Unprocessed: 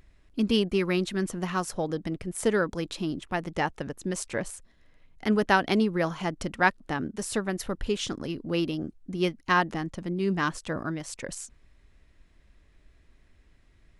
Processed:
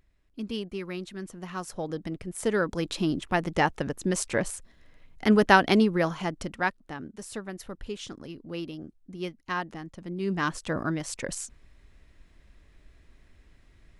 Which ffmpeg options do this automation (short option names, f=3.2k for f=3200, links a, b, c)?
-af "volume=15dB,afade=t=in:st=1.38:d=0.58:silence=0.446684,afade=t=in:st=2.46:d=0.57:silence=0.473151,afade=t=out:st=5.59:d=1.25:silence=0.251189,afade=t=in:st=9.94:d=0.95:silence=0.281838"